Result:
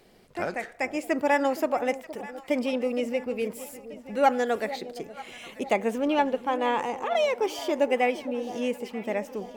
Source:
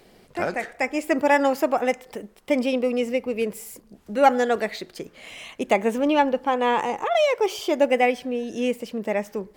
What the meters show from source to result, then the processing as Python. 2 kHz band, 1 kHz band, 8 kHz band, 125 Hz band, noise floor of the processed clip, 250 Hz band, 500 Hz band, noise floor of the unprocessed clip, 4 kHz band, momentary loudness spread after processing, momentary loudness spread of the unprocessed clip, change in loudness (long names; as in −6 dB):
−4.5 dB, −4.5 dB, −4.5 dB, can't be measured, −51 dBFS, −4.5 dB, −4.0 dB, −55 dBFS, −4.5 dB, 14 LU, 17 LU, −4.5 dB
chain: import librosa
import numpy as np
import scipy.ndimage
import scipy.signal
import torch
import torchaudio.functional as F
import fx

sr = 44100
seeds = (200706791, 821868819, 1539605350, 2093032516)

y = fx.echo_alternate(x, sr, ms=467, hz=830.0, feedback_pct=70, wet_db=-13.5)
y = y * 10.0 ** (-4.5 / 20.0)